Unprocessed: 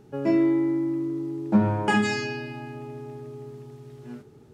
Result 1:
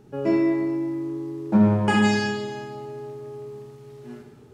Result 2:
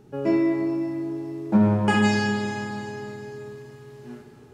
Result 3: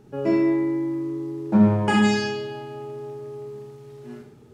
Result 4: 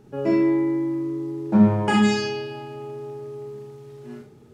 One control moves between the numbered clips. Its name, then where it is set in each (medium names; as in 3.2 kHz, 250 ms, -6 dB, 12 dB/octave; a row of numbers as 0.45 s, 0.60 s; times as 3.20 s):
Schroeder reverb, RT60: 1.4 s, 3.5 s, 0.65 s, 0.3 s